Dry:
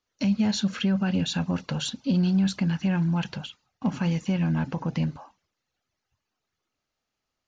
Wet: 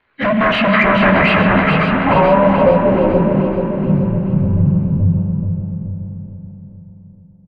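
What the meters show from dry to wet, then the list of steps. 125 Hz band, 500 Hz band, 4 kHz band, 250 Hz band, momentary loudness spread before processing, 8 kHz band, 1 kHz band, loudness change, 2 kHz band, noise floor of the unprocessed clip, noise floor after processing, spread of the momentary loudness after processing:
+11.0 dB, +23.5 dB, +6.5 dB, +9.5 dB, 8 LU, can't be measured, +23.0 dB, +12.5 dB, +21.5 dB, −84 dBFS, −44 dBFS, 13 LU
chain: partials spread apart or drawn together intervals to 88%
sine wavefolder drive 13 dB, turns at −15.5 dBFS
transient designer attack −4 dB, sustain +6 dB
low-pass filter sweep 1,900 Hz → 130 Hz, 0:01.47–0:04.10
on a send: repeating echo 429 ms, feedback 52%, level −5.5 dB
on the sum: spring reverb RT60 3.9 s, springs 31/41 ms, chirp 75 ms, DRR 6 dB
level +3.5 dB

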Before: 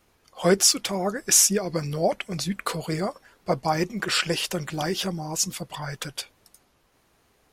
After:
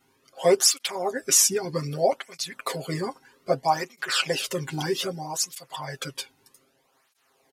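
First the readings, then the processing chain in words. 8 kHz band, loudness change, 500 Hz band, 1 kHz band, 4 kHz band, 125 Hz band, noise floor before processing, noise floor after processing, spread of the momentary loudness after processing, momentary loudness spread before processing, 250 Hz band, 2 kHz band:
−1.5 dB, −1.0 dB, +1.0 dB, +1.0 dB, −1.0 dB, −4.0 dB, −65 dBFS, −68 dBFS, 16 LU, 15 LU, −5.5 dB, −1.5 dB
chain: comb filter 7.5 ms, depth 77%
through-zero flanger with one copy inverted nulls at 0.63 Hz, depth 1.8 ms

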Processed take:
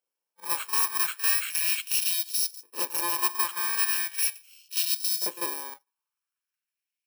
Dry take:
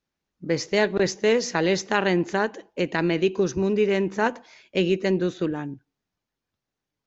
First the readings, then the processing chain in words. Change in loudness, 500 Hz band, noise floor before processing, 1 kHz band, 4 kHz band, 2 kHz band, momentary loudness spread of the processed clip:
−1.5 dB, −24.0 dB, below −85 dBFS, −4.5 dB, +2.5 dB, −5.0 dB, 8 LU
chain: samples in bit-reversed order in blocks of 64 samples
auto-filter high-pass saw up 0.38 Hz 520–5,200 Hz
echo ahead of the sound 44 ms −12.5 dB
level −4 dB

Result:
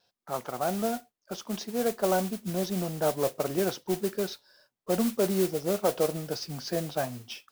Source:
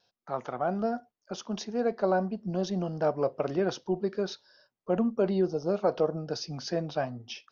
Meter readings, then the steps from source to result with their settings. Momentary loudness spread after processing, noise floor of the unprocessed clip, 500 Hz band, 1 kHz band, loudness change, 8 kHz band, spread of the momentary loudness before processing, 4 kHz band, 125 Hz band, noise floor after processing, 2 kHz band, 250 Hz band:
10 LU, below −85 dBFS, 0.0 dB, 0.0 dB, +0.5 dB, can't be measured, 10 LU, +3.0 dB, 0.0 dB, below −85 dBFS, +1.5 dB, 0.0 dB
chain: noise that follows the level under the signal 12 dB

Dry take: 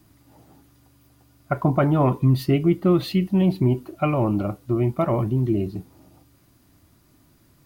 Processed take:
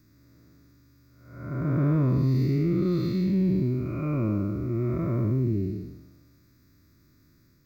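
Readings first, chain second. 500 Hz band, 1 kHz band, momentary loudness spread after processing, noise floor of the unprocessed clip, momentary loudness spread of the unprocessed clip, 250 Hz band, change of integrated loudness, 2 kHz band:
−8.0 dB, −14.5 dB, 9 LU, −58 dBFS, 7 LU, −4.0 dB, −4.5 dB, −9.0 dB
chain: spectrum smeared in time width 345 ms
phaser with its sweep stopped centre 3,000 Hz, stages 6

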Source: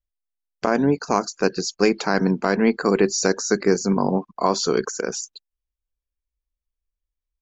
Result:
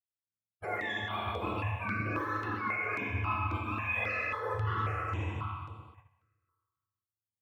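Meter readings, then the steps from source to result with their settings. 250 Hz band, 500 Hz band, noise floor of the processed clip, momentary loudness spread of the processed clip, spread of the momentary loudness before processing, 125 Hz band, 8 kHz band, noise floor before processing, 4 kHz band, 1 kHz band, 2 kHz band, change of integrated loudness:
−20.0 dB, −20.0 dB, below −85 dBFS, 7 LU, 8 LU, −5.0 dB, can't be measured, below −85 dBFS, −15.5 dB, −8.0 dB, −4.5 dB, −12.0 dB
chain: frequency axis turned over on the octave scale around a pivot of 700 Hz
low-shelf EQ 450 Hz −7 dB
on a send: feedback echo with a band-pass in the loop 152 ms, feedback 48%, band-pass 1,000 Hz, level −10 dB
on the sum: four-comb reverb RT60 1.8 s, combs from 29 ms, DRR −2.5 dB
reversed playback
downward compressor 6 to 1, threshold −28 dBFS, peak gain reduction 13.5 dB
reversed playback
noise gate −51 dBFS, range −11 dB
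step-sequenced phaser 3.7 Hz 710–6,200 Hz

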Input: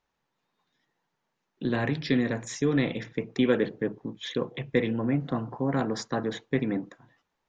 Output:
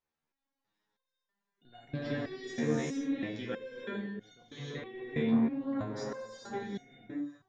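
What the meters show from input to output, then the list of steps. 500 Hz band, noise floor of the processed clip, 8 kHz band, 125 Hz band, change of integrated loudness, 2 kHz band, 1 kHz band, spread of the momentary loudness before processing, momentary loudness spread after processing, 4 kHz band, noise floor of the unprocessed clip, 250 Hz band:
−9.0 dB, below −85 dBFS, can't be measured, −9.5 dB, −7.0 dB, −8.5 dB, −8.5 dB, 8 LU, 14 LU, −9.5 dB, −81 dBFS, −5.5 dB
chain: reverb whose tail is shaped and stops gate 460 ms rising, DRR −4.5 dB
step-sequenced resonator 3.1 Hz 76–720 Hz
level −2.5 dB

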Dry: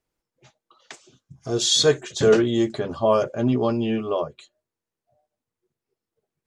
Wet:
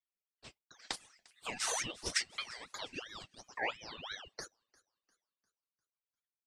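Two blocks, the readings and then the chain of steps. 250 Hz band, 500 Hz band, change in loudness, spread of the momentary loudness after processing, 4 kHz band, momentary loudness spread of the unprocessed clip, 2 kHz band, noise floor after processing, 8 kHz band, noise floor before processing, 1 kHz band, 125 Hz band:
−30.5 dB, −28.0 dB, −18.5 dB, 21 LU, −15.0 dB, 10 LU, −6.0 dB, below −85 dBFS, −11.0 dB, below −85 dBFS, −14.0 dB, −28.0 dB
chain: high-pass filter 150 Hz
noise gate with hold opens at −52 dBFS
dynamic equaliser 1,400 Hz, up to +6 dB, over −40 dBFS, Q 2.2
brickwall limiter −14.5 dBFS, peak gain reduction 9.5 dB
downward compressor 6 to 1, threshold −34 dBFS, peak gain reduction 14.5 dB
auto-filter high-pass saw up 0.84 Hz 590–4,200 Hz
flanger 1.1 Hz, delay 1.8 ms, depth 8.5 ms, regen −39%
reverb reduction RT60 0.78 s
delay with a high-pass on its return 350 ms, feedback 43%, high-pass 4,000 Hz, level −19.5 dB
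ring modulator whose carrier an LFO sweeps 2,000 Hz, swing 40%, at 2.9 Hz
level +7.5 dB

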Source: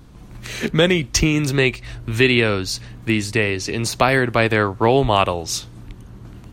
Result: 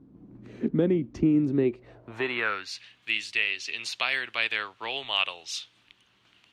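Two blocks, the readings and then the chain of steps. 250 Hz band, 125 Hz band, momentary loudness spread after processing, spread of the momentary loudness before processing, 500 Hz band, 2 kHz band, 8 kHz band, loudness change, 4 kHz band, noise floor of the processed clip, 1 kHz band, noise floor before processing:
−6.5 dB, −14.0 dB, 12 LU, 11 LU, −12.5 dB, −8.0 dB, −17.0 dB, −9.0 dB, −7.0 dB, −65 dBFS, −15.0 dB, −41 dBFS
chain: band-pass filter sweep 270 Hz → 3,000 Hz, 0:01.60–0:02.85

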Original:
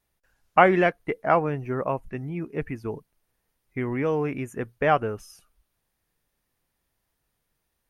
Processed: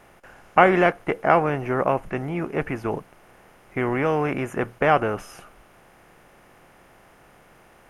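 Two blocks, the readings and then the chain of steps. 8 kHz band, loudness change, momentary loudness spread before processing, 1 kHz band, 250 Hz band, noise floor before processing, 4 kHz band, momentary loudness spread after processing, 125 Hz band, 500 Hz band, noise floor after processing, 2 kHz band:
can't be measured, +2.5 dB, 15 LU, +3.0 dB, +2.5 dB, −78 dBFS, +3.5 dB, 11 LU, +2.0 dB, +2.5 dB, −54 dBFS, +3.5 dB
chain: compressor on every frequency bin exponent 0.6

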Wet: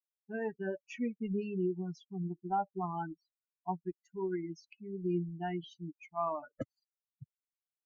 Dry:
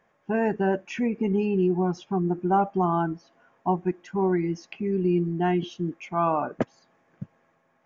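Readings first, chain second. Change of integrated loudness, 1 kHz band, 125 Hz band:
−12.0 dB, −11.5 dB, −12.5 dB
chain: spectral dynamics exaggerated over time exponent 3
level −6.5 dB

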